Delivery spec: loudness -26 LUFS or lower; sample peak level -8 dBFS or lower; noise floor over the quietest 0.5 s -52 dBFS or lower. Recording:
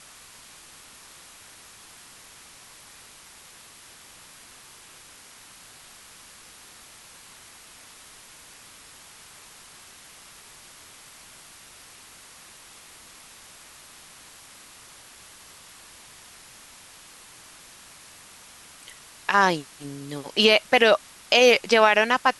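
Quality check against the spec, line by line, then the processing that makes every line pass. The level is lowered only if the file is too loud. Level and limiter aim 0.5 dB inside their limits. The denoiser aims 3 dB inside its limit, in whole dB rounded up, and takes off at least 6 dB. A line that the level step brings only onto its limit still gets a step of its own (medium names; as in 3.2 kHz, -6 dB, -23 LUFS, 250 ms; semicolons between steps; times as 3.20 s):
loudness -19.5 LUFS: fail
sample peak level -5.0 dBFS: fail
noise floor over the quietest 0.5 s -49 dBFS: fail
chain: trim -7 dB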